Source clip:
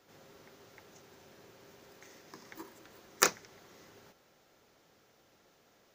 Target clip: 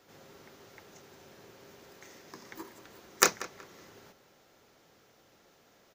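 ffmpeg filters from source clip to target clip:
ffmpeg -i in.wav -filter_complex "[0:a]asplit=2[link_01][link_02];[link_02]adelay=186,lowpass=frequency=3500:poles=1,volume=-15dB,asplit=2[link_03][link_04];[link_04]adelay=186,lowpass=frequency=3500:poles=1,volume=0.28,asplit=2[link_05][link_06];[link_06]adelay=186,lowpass=frequency=3500:poles=1,volume=0.28[link_07];[link_01][link_03][link_05][link_07]amix=inputs=4:normalize=0,volume=3dB" out.wav

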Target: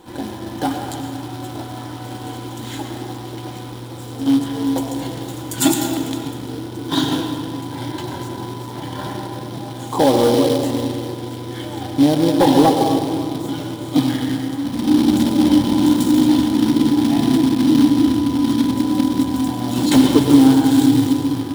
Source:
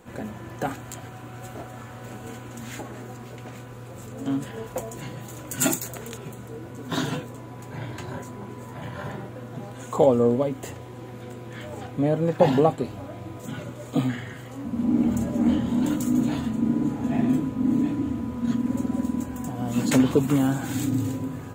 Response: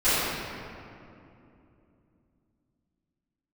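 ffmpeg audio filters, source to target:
-filter_complex "[0:a]bandreject=frequency=244.1:width_type=h:width=4,bandreject=frequency=488.2:width_type=h:width=4,bandreject=frequency=732.3:width_type=h:width=4,bandreject=frequency=976.4:width_type=h:width=4,bandreject=frequency=1220.5:width_type=h:width=4,bandreject=frequency=1464.6:width_type=h:width=4,bandreject=frequency=1708.7:width_type=h:width=4,bandreject=frequency=1952.8:width_type=h:width=4,bandreject=frequency=2196.9:width_type=h:width=4,bandreject=frequency=2441:width_type=h:width=4,bandreject=frequency=2685.1:width_type=h:width=4,bandreject=frequency=2929.2:width_type=h:width=4,bandreject=frequency=3173.3:width_type=h:width=4,bandreject=frequency=3417.4:width_type=h:width=4,bandreject=frequency=3661.5:width_type=h:width=4,bandreject=frequency=3905.6:width_type=h:width=4,bandreject=frequency=4149.7:width_type=h:width=4,bandreject=frequency=4393.8:width_type=h:width=4,bandreject=frequency=4637.9:width_type=h:width=4,bandreject=frequency=4882:width_type=h:width=4,bandreject=frequency=5126.1:width_type=h:width=4,bandreject=frequency=5370.2:width_type=h:width=4,bandreject=frequency=5614.3:width_type=h:width=4,bandreject=frequency=5858.4:width_type=h:width=4,bandreject=frequency=6102.5:width_type=h:width=4,bandreject=frequency=6346.6:width_type=h:width=4,bandreject=frequency=6590.7:width_type=h:width=4,bandreject=frequency=6834.8:width_type=h:width=4,asplit=2[link_01][link_02];[1:a]atrim=start_sample=2205,asetrate=57330,aresample=44100,adelay=86[link_03];[link_02][link_03]afir=irnorm=-1:irlink=0,volume=-20dB[link_04];[link_01][link_04]amix=inputs=2:normalize=0,acrusher=bits=3:mode=log:mix=0:aa=0.000001,volume=12dB,asoftclip=hard,volume=-12dB,superequalizer=6b=3.16:9b=2.24:13b=2.82:14b=2:16b=1.58,volume=2dB"

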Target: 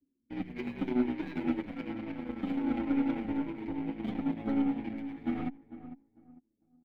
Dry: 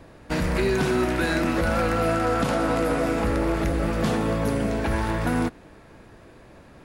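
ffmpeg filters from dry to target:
ffmpeg -i in.wav -filter_complex "[0:a]anlmdn=0.631,asplit=3[link_01][link_02][link_03];[link_01]bandpass=frequency=270:width_type=q:width=8,volume=0dB[link_04];[link_02]bandpass=frequency=2290:width_type=q:width=8,volume=-6dB[link_05];[link_03]bandpass=frequency=3010:width_type=q:width=8,volume=-9dB[link_06];[link_04][link_05][link_06]amix=inputs=3:normalize=0,tiltshelf=frequency=640:gain=3,bandreject=frequency=2800:width=17,tremolo=f=10:d=0.38,acrossover=split=150|4000[link_07][link_08][link_09];[link_09]acrusher=samples=30:mix=1:aa=0.000001:lfo=1:lforange=30:lforate=1.1[link_10];[link_07][link_08][link_10]amix=inputs=3:normalize=0,aeval=exprs='0.0891*(cos(1*acos(clip(val(0)/0.0891,-1,1)))-cos(1*PI/2))+0.0158*(cos(2*acos(clip(val(0)/0.0891,-1,1)))-cos(2*PI/2))+0.00282*(cos(4*acos(clip(val(0)/0.0891,-1,1)))-cos(4*PI/2))+0.00126*(cos(6*acos(clip(val(0)/0.0891,-1,1)))-cos(6*PI/2))+0.00891*(cos(7*acos(clip(val(0)/0.0891,-1,1)))-cos(7*PI/2))':channel_layout=same,asplit=2[link_11][link_12];[link_12]adelay=450,lowpass=frequency=1100:poles=1,volume=-12.5dB,asplit=2[link_13][link_14];[link_14]adelay=450,lowpass=frequency=1100:poles=1,volume=0.26,asplit=2[link_15][link_16];[link_16]adelay=450,lowpass=frequency=1100:poles=1,volume=0.26[link_17];[link_13][link_15][link_17]amix=inputs=3:normalize=0[link_18];[link_11][link_18]amix=inputs=2:normalize=0,asplit=2[link_19][link_20];[link_20]adelay=7.3,afreqshift=-2.4[link_21];[link_19][link_21]amix=inputs=2:normalize=1,volume=5dB" out.wav

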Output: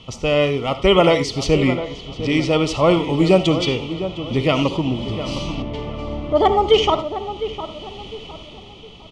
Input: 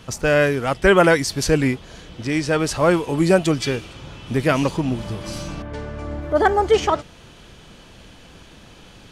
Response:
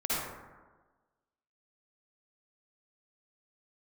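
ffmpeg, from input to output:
-filter_complex "[0:a]lowpass=4800,equalizer=frequency=3100:width_type=o:width=0.34:gain=10,dynaudnorm=framelen=120:gausssize=13:maxgain=7dB,asuperstop=centerf=1600:order=4:qfactor=2.5,asplit=2[link_01][link_02];[link_02]adelay=707,lowpass=frequency=1700:poles=1,volume=-11dB,asplit=2[link_03][link_04];[link_04]adelay=707,lowpass=frequency=1700:poles=1,volume=0.36,asplit=2[link_05][link_06];[link_06]adelay=707,lowpass=frequency=1700:poles=1,volume=0.36,asplit=2[link_07][link_08];[link_08]adelay=707,lowpass=frequency=1700:poles=1,volume=0.36[link_09];[link_01][link_03][link_05][link_07][link_09]amix=inputs=5:normalize=0,asplit=2[link_10][link_11];[1:a]atrim=start_sample=2205,afade=type=out:start_time=0.15:duration=0.01,atrim=end_sample=7056[link_12];[link_11][link_12]afir=irnorm=-1:irlink=0,volume=-14.5dB[link_13];[link_10][link_13]amix=inputs=2:normalize=0,volume=-2dB"

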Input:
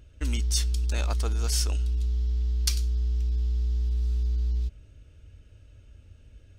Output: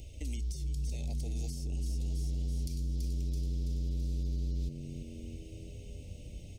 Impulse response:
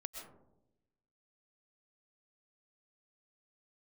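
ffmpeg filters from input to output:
-filter_complex "[0:a]asplit=2[link_01][link_02];[link_02]aeval=exprs='sgn(val(0))*max(abs(val(0))-0.0112,0)':channel_layout=same,volume=-10dB[link_03];[link_01][link_03]amix=inputs=2:normalize=0,acompressor=threshold=-34dB:ratio=6,alimiter=level_in=10.5dB:limit=-24dB:level=0:latency=1,volume=-10.5dB,bass=frequency=250:gain=-1,treble=frequency=4000:gain=8,asplit=2[link_04][link_05];[link_05]asplit=6[link_06][link_07][link_08][link_09][link_10][link_11];[link_06]adelay=331,afreqshift=87,volume=-12dB[link_12];[link_07]adelay=662,afreqshift=174,volume=-17.2dB[link_13];[link_08]adelay=993,afreqshift=261,volume=-22.4dB[link_14];[link_09]adelay=1324,afreqshift=348,volume=-27.6dB[link_15];[link_10]adelay=1655,afreqshift=435,volume=-32.8dB[link_16];[link_11]adelay=1986,afreqshift=522,volume=-38dB[link_17];[link_12][link_13][link_14][link_15][link_16][link_17]amix=inputs=6:normalize=0[link_18];[link_04][link_18]amix=inputs=2:normalize=0,acrossover=split=470[link_19][link_20];[link_20]acompressor=threshold=-54dB:ratio=10[link_21];[link_19][link_21]amix=inputs=2:normalize=0,asuperstop=centerf=1300:order=12:qfactor=1.1,volume=6dB"

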